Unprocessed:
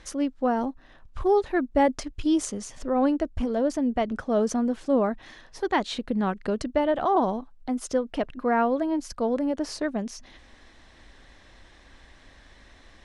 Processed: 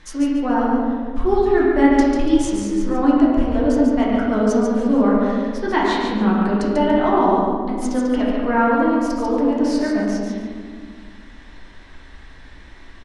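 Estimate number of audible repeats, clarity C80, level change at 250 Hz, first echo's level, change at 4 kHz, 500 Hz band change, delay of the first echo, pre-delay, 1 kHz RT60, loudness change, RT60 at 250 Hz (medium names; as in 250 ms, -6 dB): 1, -0.5 dB, +10.0 dB, -4.0 dB, +5.5 dB, +6.0 dB, 143 ms, 3 ms, 1.6 s, +8.0 dB, 2.5 s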